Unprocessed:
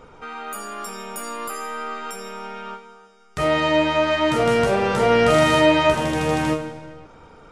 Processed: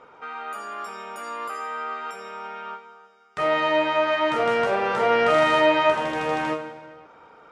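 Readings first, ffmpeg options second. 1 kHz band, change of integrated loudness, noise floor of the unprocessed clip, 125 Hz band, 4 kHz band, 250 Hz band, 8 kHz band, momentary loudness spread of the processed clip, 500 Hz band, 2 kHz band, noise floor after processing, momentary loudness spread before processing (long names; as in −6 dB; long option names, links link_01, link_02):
−0.5 dB, −3.0 dB, −48 dBFS, −14.0 dB, −4.5 dB, −8.0 dB, below −10 dB, 18 LU, −3.0 dB, −1.5 dB, −51 dBFS, 19 LU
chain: -af "bandpass=frequency=1200:width_type=q:width=0.59:csg=0"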